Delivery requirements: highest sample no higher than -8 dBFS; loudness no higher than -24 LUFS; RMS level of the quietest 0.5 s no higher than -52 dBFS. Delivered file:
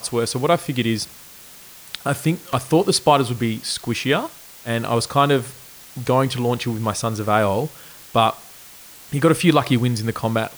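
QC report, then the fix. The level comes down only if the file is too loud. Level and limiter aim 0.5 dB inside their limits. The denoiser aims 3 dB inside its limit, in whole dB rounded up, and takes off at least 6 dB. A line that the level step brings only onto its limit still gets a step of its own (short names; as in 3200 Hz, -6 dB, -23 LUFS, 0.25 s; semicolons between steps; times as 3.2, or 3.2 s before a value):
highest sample -2.5 dBFS: fail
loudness -20.5 LUFS: fail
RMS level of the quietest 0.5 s -43 dBFS: fail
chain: denoiser 8 dB, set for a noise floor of -43 dBFS; gain -4 dB; limiter -8.5 dBFS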